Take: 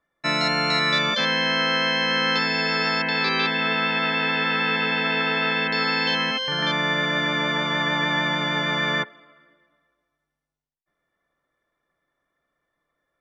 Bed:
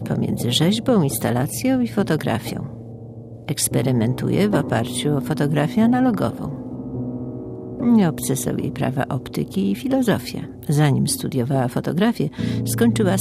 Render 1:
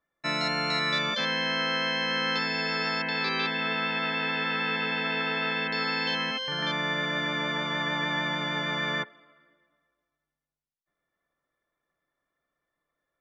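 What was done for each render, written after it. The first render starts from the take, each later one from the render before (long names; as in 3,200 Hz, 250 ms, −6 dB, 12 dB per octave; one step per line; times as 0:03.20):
level −6 dB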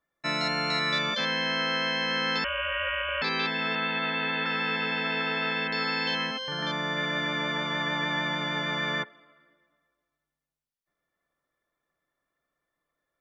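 0:02.44–0:03.22: voice inversion scrambler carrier 3,200 Hz
0:03.75–0:04.46: Butterworth low-pass 4,500 Hz 72 dB per octave
0:06.27–0:06.97: parametric band 2,400 Hz −5 dB 0.81 octaves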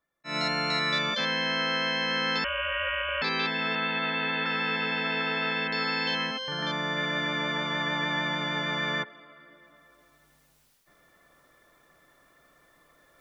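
reversed playback
upward compression, threshold −43 dBFS
reversed playback
volume swells 139 ms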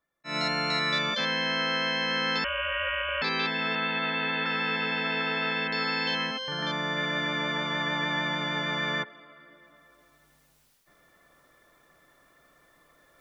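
no processing that can be heard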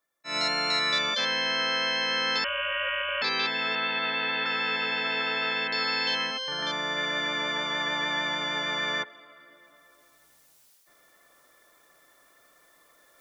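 bass and treble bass −11 dB, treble +7 dB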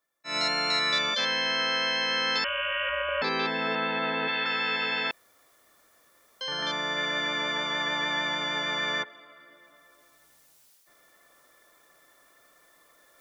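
0:02.89–0:04.28: tilt shelving filter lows +7 dB, about 1,500 Hz
0:05.11–0:06.41: fill with room tone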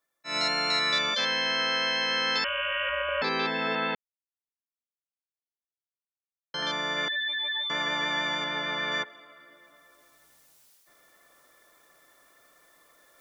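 0:03.95–0:06.54: silence
0:07.08–0:07.70: expanding power law on the bin magnitudes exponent 3.8
0:08.44–0:08.92: high-frequency loss of the air 110 metres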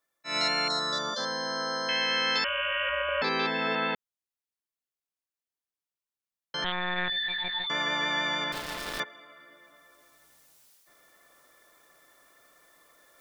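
0:00.68–0:01.89: Butterworth band-reject 2,500 Hz, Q 0.93
0:06.64–0:07.67: one-pitch LPC vocoder at 8 kHz 180 Hz
0:08.52–0:09.00: gap after every zero crossing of 0.21 ms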